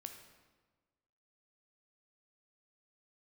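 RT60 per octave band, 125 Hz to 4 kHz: 1.5, 1.5, 1.4, 1.3, 1.1, 0.95 seconds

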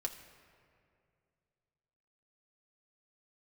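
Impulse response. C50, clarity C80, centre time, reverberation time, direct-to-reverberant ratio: 10.0 dB, 11.0 dB, 22 ms, 2.4 s, 1.0 dB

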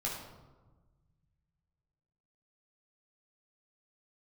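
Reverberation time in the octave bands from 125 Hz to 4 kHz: 2.8, 2.1, 1.3, 1.2, 0.80, 0.65 seconds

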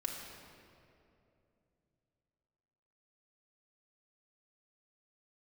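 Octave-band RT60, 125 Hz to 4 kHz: 3.9, 3.4, 3.1, 2.4, 2.1, 1.6 seconds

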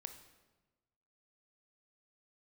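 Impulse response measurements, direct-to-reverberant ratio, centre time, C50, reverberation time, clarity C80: 7.5 dB, 14 ms, 9.5 dB, 1.2 s, 12.0 dB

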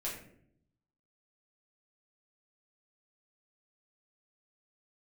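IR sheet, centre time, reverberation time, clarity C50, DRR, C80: 37 ms, 0.65 s, 4.5 dB, −6.5 dB, 8.0 dB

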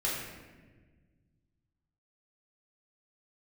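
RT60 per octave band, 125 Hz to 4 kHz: 2.7, 2.2, 1.6, 1.1, 1.3, 0.90 seconds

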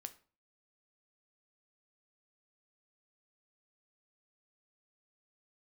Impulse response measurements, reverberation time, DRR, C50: 0.40 s, 9.5 dB, 16.5 dB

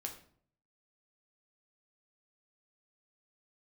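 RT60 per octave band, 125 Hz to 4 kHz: 0.85, 0.70, 0.60, 0.50, 0.45, 0.40 seconds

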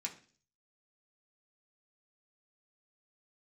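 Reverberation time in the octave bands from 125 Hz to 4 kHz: 0.65, 0.55, 0.50, 0.40, 0.45, 0.50 seconds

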